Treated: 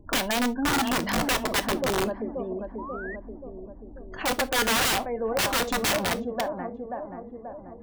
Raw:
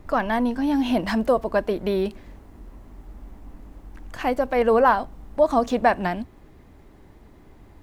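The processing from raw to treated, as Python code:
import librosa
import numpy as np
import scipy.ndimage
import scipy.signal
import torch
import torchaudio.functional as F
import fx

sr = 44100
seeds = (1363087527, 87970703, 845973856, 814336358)

y = fx.hum_notches(x, sr, base_hz=50, count=3)
y = fx.spec_gate(y, sr, threshold_db=-25, keep='strong')
y = fx.low_shelf(y, sr, hz=79.0, db=-3.5)
y = fx.echo_tape(y, sr, ms=534, feedback_pct=68, wet_db=-6.0, lp_hz=1000.0, drive_db=4.0, wow_cents=33)
y = (np.mod(10.0 ** (16.5 / 20.0) * y + 1.0, 2.0) - 1.0) / 10.0 ** (16.5 / 20.0)
y = fx.rev_gated(y, sr, seeds[0], gate_ms=90, shape='falling', drr_db=11.5)
y = fx.spec_paint(y, sr, seeds[1], shape='rise', start_s=2.78, length_s=0.38, low_hz=910.0, high_hz=2000.0, level_db=-36.0)
y = F.gain(torch.from_numpy(y), -2.5).numpy()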